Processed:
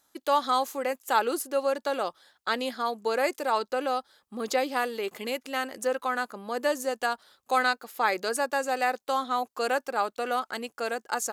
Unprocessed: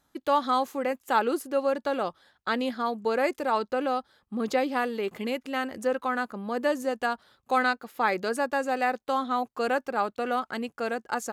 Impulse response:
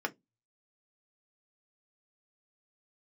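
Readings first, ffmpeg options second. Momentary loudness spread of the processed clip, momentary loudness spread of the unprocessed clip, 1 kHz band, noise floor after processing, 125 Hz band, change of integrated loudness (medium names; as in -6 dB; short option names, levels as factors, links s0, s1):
7 LU, 6 LU, 0.0 dB, -80 dBFS, no reading, -0.5 dB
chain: -af "bass=f=250:g=-12,treble=f=4000:g=8"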